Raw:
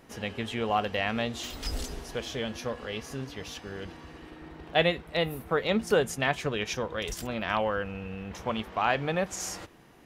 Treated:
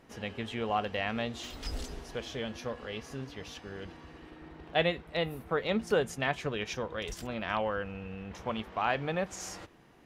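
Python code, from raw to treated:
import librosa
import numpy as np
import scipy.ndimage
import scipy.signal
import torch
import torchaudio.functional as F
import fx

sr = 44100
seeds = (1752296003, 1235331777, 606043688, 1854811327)

y = fx.high_shelf(x, sr, hz=8000.0, db=-8.0)
y = y * librosa.db_to_amplitude(-3.5)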